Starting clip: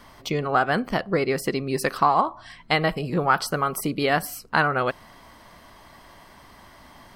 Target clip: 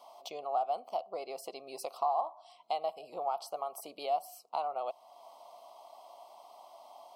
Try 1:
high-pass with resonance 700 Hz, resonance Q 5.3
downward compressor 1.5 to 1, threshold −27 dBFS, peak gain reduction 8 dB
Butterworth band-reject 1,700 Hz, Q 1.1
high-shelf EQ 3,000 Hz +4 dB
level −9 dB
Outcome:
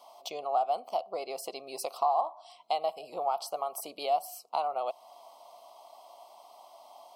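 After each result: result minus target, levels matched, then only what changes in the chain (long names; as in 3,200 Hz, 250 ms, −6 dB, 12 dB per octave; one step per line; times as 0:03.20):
downward compressor: peak gain reduction −3.5 dB; 8,000 Hz band +3.0 dB
change: downward compressor 1.5 to 1, threshold −37.5 dBFS, peak gain reduction 11.5 dB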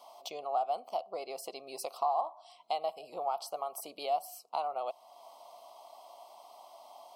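8,000 Hz band +3.0 dB
remove: high-shelf EQ 3,000 Hz +4 dB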